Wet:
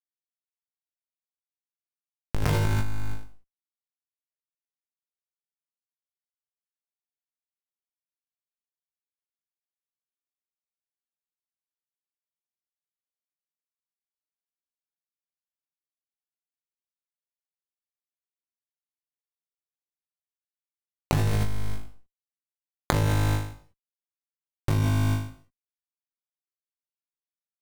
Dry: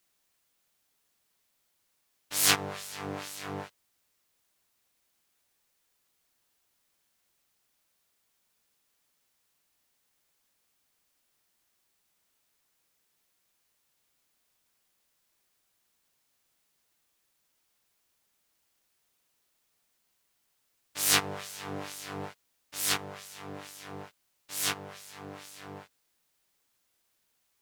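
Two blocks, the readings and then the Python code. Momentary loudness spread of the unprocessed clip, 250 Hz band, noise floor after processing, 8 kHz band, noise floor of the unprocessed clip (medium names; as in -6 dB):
21 LU, +9.0 dB, under -85 dBFS, -11.5 dB, -75 dBFS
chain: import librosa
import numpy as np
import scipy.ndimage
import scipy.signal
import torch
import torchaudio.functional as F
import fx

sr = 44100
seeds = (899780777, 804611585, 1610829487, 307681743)

p1 = fx.lower_of_two(x, sr, delay_ms=0.89)
p2 = fx.bass_treble(p1, sr, bass_db=14, treble_db=-4)
p3 = fx.rider(p2, sr, range_db=4, speed_s=0.5)
p4 = p2 + (p3 * librosa.db_to_amplitude(2.0))
p5 = fx.schmitt(p4, sr, flips_db=-12.5)
p6 = fx.vibrato(p5, sr, rate_hz=2.6, depth_cents=23.0)
p7 = p6 + fx.room_flutter(p6, sr, wall_m=3.3, rt60_s=0.59, dry=0)
p8 = fx.rev_gated(p7, sr, seeds[0], gate_ms=220, shape='falling', drr_db=4.0)
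y = fx.env_flatten(p8, sr, amount_pct=100)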